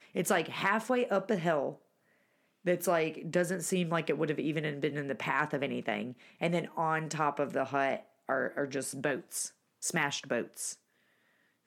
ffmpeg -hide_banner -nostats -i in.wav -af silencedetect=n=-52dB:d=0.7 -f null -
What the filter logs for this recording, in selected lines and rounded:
silence_start: 1.76
silence_end: 2.65 | silence_duration: 0.89
silence_start: 10.76
silence_end: 11.66 | silence_duration: 0.91